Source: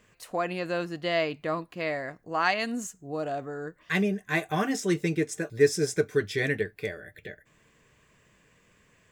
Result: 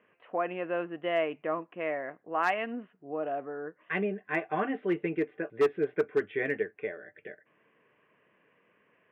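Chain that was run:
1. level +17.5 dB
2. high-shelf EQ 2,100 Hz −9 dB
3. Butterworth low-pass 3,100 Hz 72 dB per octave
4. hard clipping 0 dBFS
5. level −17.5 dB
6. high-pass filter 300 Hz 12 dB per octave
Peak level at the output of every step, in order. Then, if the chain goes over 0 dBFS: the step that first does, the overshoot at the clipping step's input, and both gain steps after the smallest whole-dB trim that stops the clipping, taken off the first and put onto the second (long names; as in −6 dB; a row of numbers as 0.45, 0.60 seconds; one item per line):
+8.0, +7.5, +7.5, 0.0, −17.5, −13.5 dBFS
step 1, 7.5 dB
step 1 +9.5 dB, step 5 −9.5 dB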